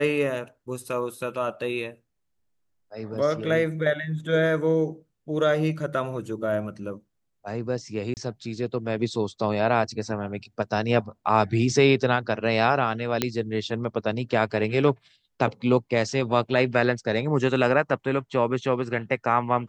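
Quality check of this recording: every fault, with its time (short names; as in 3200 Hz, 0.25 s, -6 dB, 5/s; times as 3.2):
8.14–8.17 gap 29 ms
13.22 pop -6 dBFS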